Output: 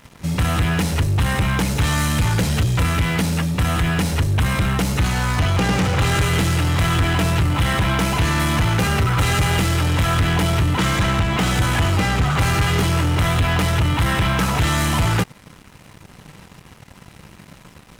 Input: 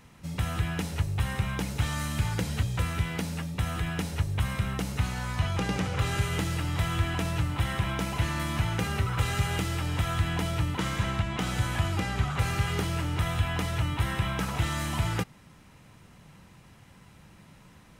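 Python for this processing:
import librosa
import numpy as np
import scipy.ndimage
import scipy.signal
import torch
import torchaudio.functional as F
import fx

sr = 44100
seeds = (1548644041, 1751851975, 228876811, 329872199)

y = fx.leveller(x, sr, passes=3)
y = y * 10.0 ** (3.0 / 20.0)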